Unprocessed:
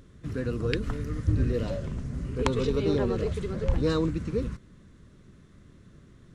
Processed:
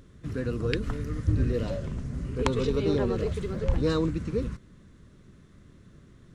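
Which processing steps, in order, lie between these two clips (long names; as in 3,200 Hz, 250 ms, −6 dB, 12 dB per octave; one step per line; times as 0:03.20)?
0:03.15–0:03.59: bit-depth reduction 12 bits, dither none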